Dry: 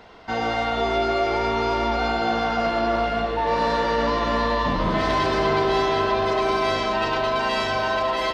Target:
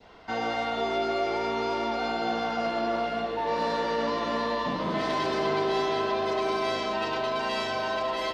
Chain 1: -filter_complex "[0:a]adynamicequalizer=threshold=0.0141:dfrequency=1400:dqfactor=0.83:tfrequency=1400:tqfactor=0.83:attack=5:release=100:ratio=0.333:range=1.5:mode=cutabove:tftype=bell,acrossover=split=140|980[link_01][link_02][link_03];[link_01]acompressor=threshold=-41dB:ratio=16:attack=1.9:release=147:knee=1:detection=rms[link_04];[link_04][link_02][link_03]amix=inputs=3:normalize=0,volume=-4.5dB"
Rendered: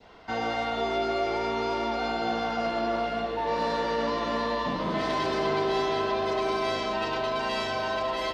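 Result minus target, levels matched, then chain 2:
downward compressor: peak gain reduction −6 dB
-filter_complex "[0:a]adynamicequalizer=threshold=0.0141:dfrequency=1400:dqfactor=0.83:tfrequency=1400:tqfactor=0.83:attack=5:release=100:ratio=0.333:range=1.5:mode=cutabove:tftype=bell,acrossover=split=140|980[link_01][link_02][link_03];[link_01]acompressor=threshold=-47.5dB:ratio=16:attack=1.9:release=147:knee=1:detection=rms[link_04];[link_04][link_02][link_03]amix=inputs=3:normalize=0,volume=-4.5dB"

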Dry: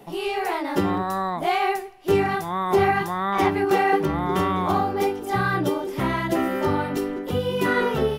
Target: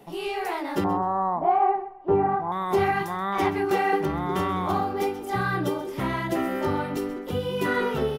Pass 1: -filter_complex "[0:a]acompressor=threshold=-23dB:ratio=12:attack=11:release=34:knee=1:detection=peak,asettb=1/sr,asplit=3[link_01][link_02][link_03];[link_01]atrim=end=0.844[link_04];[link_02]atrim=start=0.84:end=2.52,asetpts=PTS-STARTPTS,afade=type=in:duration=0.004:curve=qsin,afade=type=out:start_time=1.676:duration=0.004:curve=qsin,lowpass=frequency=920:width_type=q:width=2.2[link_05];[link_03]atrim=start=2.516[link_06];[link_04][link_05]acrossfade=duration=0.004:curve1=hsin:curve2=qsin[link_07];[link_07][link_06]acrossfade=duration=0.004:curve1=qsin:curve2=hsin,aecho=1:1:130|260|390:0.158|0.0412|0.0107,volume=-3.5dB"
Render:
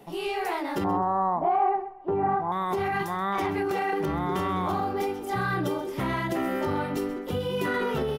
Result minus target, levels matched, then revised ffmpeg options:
downward compressor: peak gain reduction +8.5 dB
-filter_complex "[0:a]asettb=1/sr,asplit=3[link_01][link_02][link_03];[link_01]atrim=end=0.844[link_04];[link_02]atrim=start=0.84:end=2.52,asetpts=PTS-STARTPTS,afade=type=in:duration=0.004:curve=qsin,afade=type=out:start_time=1.676:duration=0.004:curve=qsin,lowpass=frequency=920:width_type=q:width=2.2[link_05];[link_03]atrim=start=2.516[link_06];[link_04][link_05]acrossfade=duration=0.004:curve1=hsin:curve2=qsin[link_07];[link_07][link_06]acrossfade=duration=0.004:curve1=qsin:curve2=hsin,aecho=1:1:130|260|390:0.158|0.0412|0.0107,volume=-3.5dB"

